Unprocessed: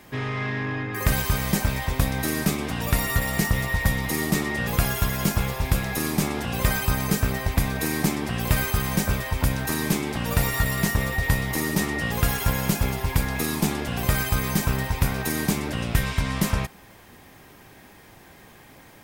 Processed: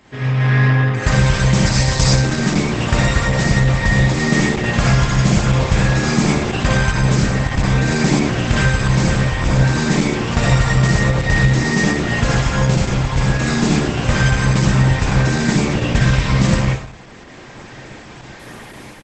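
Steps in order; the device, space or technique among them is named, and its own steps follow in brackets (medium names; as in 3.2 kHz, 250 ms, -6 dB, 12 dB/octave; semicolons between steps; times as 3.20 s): 1.66–2.15 s: high-order bell 5.6 kHz +13 dB 1.1 oct; speakerphone in a meeting room (reverberation RT60 0.60 s, pre-delay 52 ms, DRR -3 dB; speakerphone echo 80 ms, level -25 dB; level rider gain up to 10 dB; Opus 12 kbps 48 kHz)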